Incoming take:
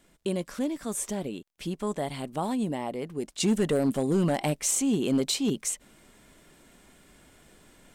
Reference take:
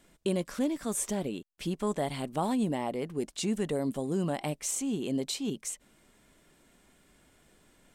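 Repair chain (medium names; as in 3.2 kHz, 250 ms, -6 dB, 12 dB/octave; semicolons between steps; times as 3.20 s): clip repair -18 dBFS; de-click; gain correction -6.5 dB, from 3.40 s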